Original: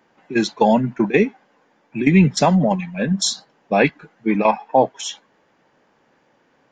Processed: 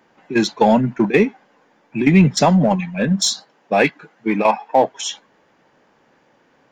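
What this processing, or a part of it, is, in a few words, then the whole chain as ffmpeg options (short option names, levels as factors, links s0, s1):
parallel distortion: -filter_complex "[0:a]asettb=1/sr,asplit=3[s0][s1][s2];[s0]atrim=end=3.274[s3];[s1]atrim=start=3.27:end=4.91,asetpts=PTS-STARTPTS,afade=t=in:d=0.004:c=qsin,afade=t=out:st=1.636:d=0.004:c=qsin,highpass=f=260:p=1[s4];[s2]atrim=start=4.906[s5];[s3][s4]acrossfade=d=0.004:c1=hsin:c2=qsin[s6];[s6][s5]acrossfade=d=0.004:c1=qsin:c2=hsin,asplit=2[s7][s8];[s8]asoftclip=type=hard:threshold=0.126,volume=0.398[s9];[s7][s9]amix=inputs=2:normalize=0"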